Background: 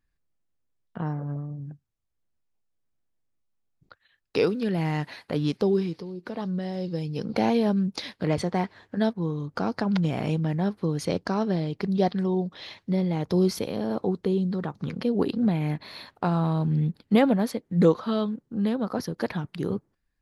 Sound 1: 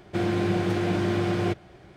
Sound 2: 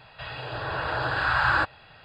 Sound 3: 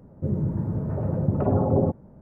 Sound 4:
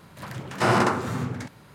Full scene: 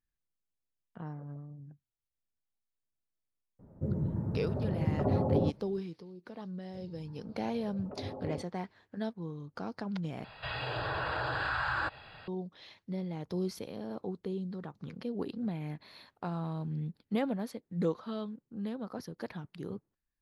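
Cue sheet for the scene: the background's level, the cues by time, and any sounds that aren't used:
background -12 dB
3.59 add 3 -7 dB
6.51 add 3 -17.5 dB + spectral noise reduction 11 dB
10.24 replace with 2 -0.5 dB + compressor 4:1, threshold -30 dBFS
not used: 1, 4

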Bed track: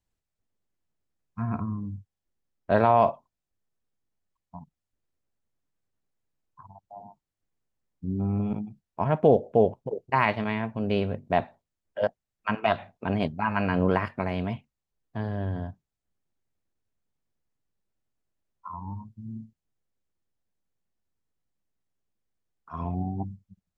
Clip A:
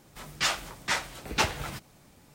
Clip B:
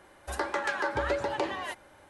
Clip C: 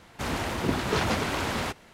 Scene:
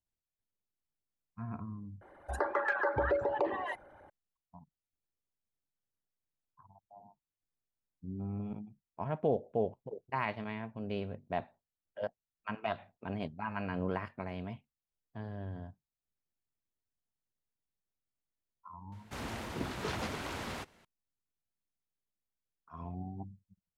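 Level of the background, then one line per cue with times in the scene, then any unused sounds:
bed track -11.5 dB
2.01 replace with B -1 dB + formant sharpening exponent 2
18.92 add C -11 dB
not used: A

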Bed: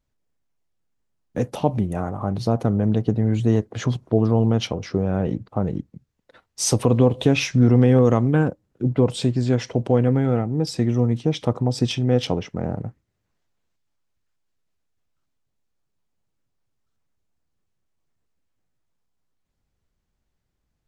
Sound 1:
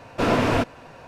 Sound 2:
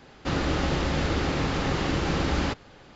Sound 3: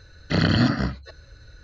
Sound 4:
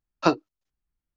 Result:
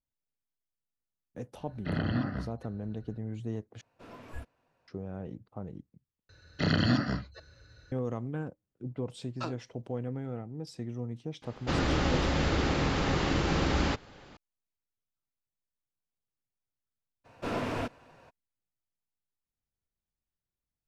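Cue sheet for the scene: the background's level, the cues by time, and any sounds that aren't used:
bed -17.5 dB
1.55 add 3 -10.5 dB + air absorption 330 m
3.81 replace with 1 -7.5 dB + spectral noise reduction 22 dB
6.29 replace with 3 -6.5 dB + HPF 69 Hz
9.18 add 4 -3 dB + compressor, threshold -30 dBFS
11.42 add 2 -2 dB
17.24 add 1 -12.5 dB, fades 0.02 s

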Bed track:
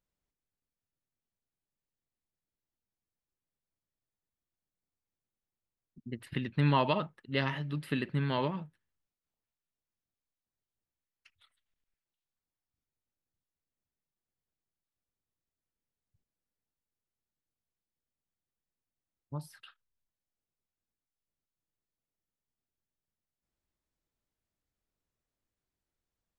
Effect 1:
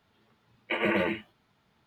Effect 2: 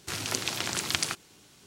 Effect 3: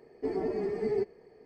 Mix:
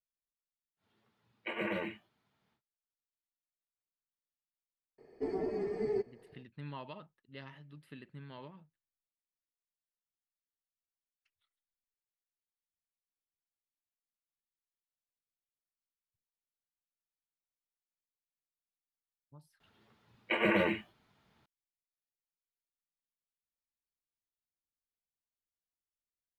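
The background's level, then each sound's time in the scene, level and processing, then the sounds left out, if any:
bed track -18 dB
0.76 add 1 -9.5 dB, fades 0.10 s + HPF 82 Hz
4.98 add 3 -4 dB
19.6 add 1 -2 dB
not used: 2

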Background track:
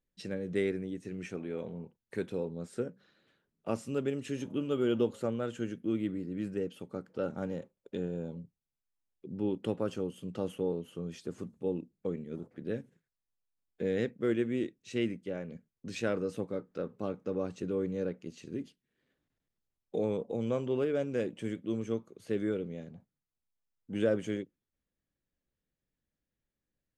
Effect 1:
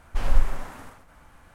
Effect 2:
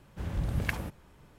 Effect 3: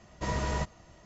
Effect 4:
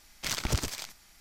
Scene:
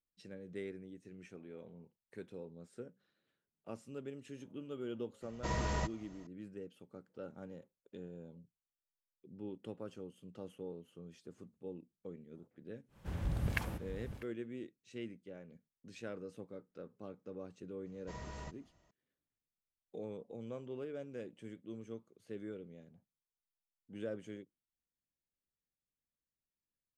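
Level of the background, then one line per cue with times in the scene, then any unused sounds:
background track -13 dB
5.22 add 3 -4.5 dB
12.88 add 2 -4.5 dB, fades 0.10 s + echo 0.647 s -11.5 dB
17.86 add 3 -16 dB
not used: 1, 4

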